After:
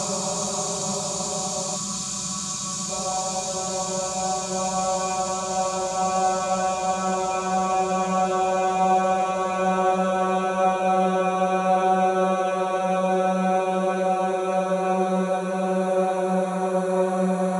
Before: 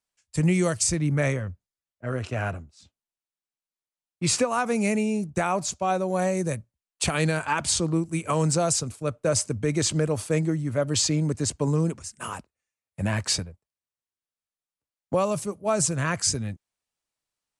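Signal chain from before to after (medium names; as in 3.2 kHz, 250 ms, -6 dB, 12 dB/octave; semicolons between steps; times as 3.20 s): Paulstretch 42×, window 0.50 s, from 5.66 s; time-frequency box 1.76–2.90 s, 360–990 Hz -16 dB; trim +3 dB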